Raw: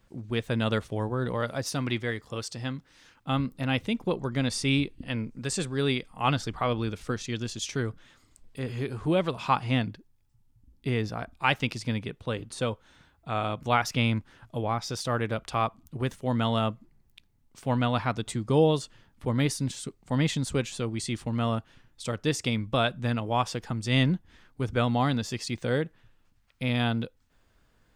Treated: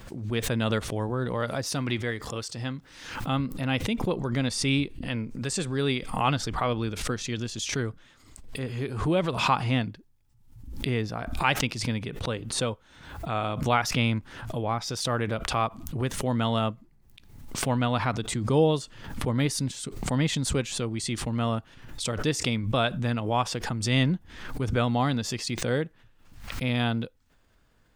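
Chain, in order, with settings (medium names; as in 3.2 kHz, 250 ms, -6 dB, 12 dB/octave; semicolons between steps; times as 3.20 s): swell ahead of each attack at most 66 dB/s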